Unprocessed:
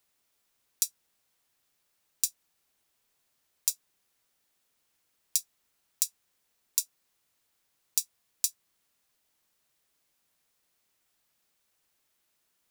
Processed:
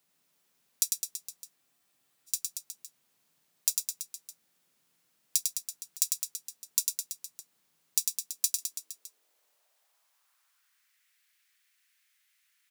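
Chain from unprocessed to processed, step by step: high-pass sweep 160 Hz -> 1.9 kHz, 7.96–10.94 s; reverse bouncing-ball echo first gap 100 ms, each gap 1.1×, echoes 5; spectral freeze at 1.58 s, 0.71 s

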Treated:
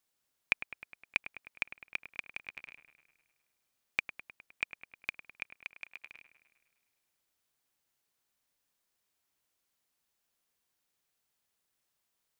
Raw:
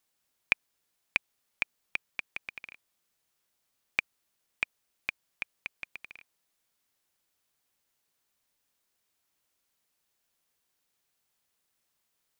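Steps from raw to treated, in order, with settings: 5.57–6.05 s: bass shelf 250 Hz -11.5 dB; feedback echo behind a low-pass 103 ms, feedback 63%, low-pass 2.3 kHz, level -11 dB; trim -3.5 dB

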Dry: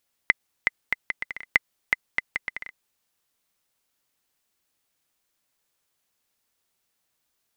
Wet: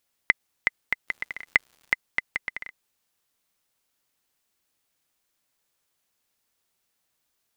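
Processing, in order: 1.07–1.93 s: crackle 190 per s -44 dBFS

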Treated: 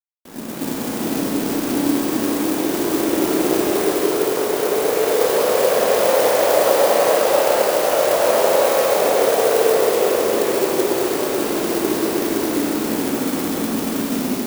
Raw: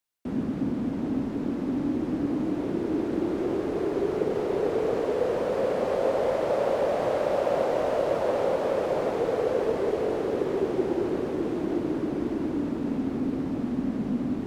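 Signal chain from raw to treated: hum notches 50/100/150/200/250/300 Hz; in parallel at -4 dB: short-mantissa float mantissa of 2-bit; on the sum: level rider gain up to 11.5 dB; RIAA curve recording; crossover distortion -35.5 dBFS; Schroeder reverb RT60 3.6 s, combs from 28 ms, DRR -1 dB; trim -3.5 dB

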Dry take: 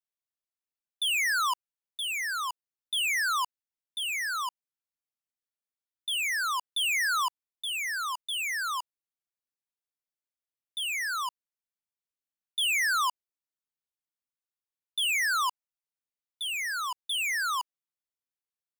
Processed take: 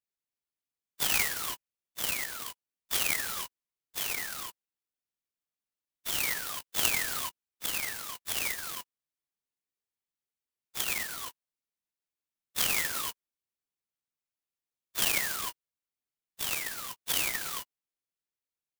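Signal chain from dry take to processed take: phase randomisation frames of 50 ms; high-order bell 1 kHz -13.5 dB; sampling jitter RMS 0.07 ms

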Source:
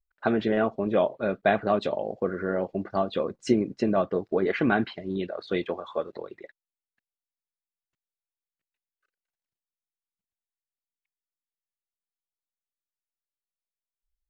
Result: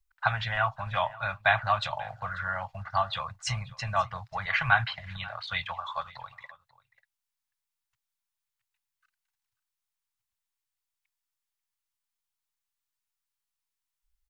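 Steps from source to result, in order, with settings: Chebyshev band-stop 120–870 Hz, order 3; delay 539 ms -20.5 dB; trim +6.5 dB

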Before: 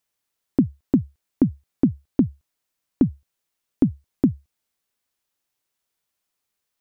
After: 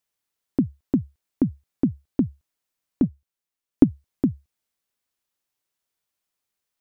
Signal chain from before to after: 3.03–3.84 s: transient shaper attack +8 dB, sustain -6 dB; trim -3 dB

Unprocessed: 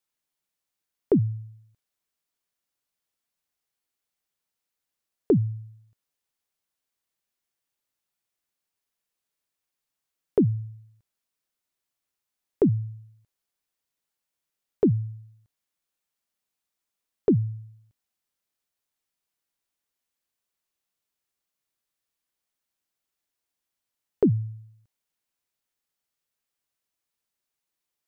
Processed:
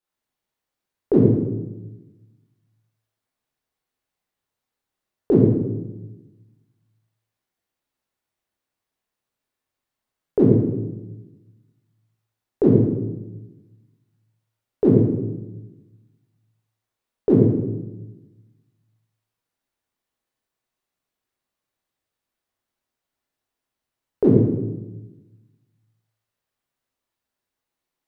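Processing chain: reverberation RT60 1.1 s, pre-delay 16 ms, DRR -6.5 dB; tape noise reduction on one side only decoder only

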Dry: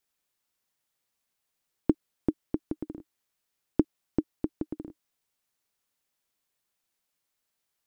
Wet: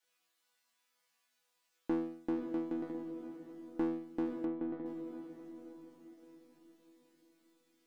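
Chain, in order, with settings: treble shelf 2.1 kHz +10.5 dB; chord resonator E3 fifth, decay 0.55 s; echo that smears into a reverb 557 ms, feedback 47%, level -11.5 dB; overdrive pedal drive 22 dB, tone 1.4 kHz, clips at -31.5 dBFS; 4.45–4.86 s: distance through air 340 m; trim +7.5 dB

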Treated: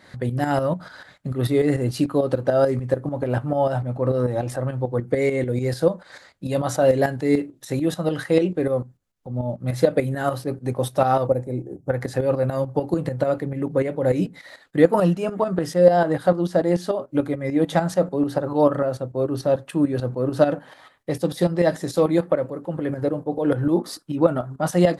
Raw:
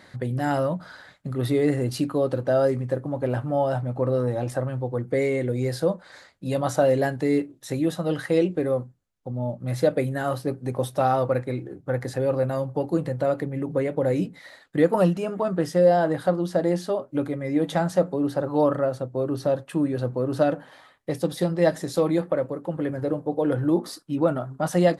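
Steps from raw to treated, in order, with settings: tremolo saw up 6.8 Hz, depth 65%; 11.27–11.90 s: high-order bell 2.2 kHz -14.5 dB 2.3 oct; trim +5.5 dB

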